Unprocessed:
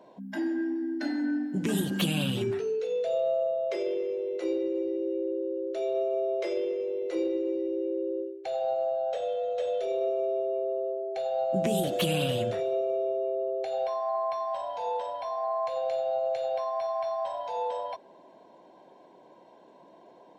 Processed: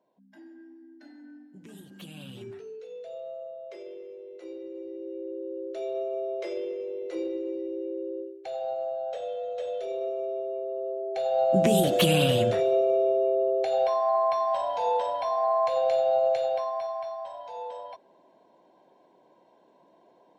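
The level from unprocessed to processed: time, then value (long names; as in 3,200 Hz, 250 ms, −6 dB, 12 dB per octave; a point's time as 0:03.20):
0:01.89 −19.5 dB
0:02.47 −12 dB
0:04.45 −12 dB
0:05.60 −3 dB
0:10.69 −3 dB
0:11.47 +5.5 dB
0:16.27 +5.5 dB
0:17.25 −6 dB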